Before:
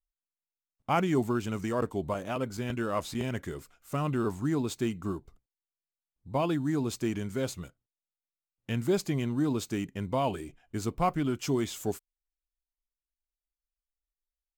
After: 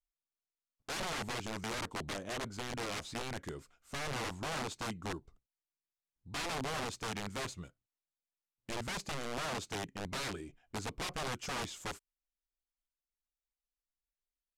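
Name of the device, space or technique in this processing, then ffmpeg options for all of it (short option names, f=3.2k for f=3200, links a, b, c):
overflowing digital effects unit: -af "aeval=exprs='(mod(22.4*val(0)+1,2)-1)/22.4':c=same,lowpass=8.5k,volume=-5.5dB"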